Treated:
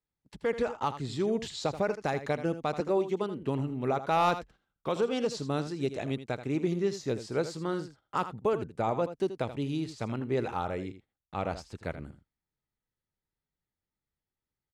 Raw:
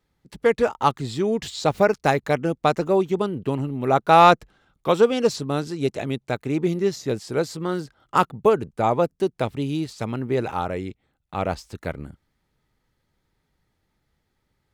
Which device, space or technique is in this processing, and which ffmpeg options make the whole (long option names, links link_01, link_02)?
clipper into limiter: -filter_complex "[0:a]lowpass=9100,asoftclip=type=hard:threshold=-6.5dB,alimiter=limit=-12.5dB:level=0:latency=1:release=116,agate=range=-14dB:threshold=-48dB:ratio=16:detection=peak,asettb=1/sr,asplit=3[link_01][link_02][link_03];[link_01]atrim=end=2.804[link_04];[link_02]atrim=start=2.8:end=3.42,asetpts=PTS-STARTPTS,afade=type=in:duration=0.004:curve=qsin,afade=type=out:start_time=0.616:duration=0.004:curve=qsin,highpass=190[link_05];[link_03]atrim=start=3.416[link_06];[link_04][link_05]acrossfade=duration=0.004:curve1=hsin:curve2=qsin[link_07];[link_07][link_06]acrossfade=duration=0.004:curve1=qsin:curve2=hsin,aecho=1:1:81:0.251,volume=-6.5dB"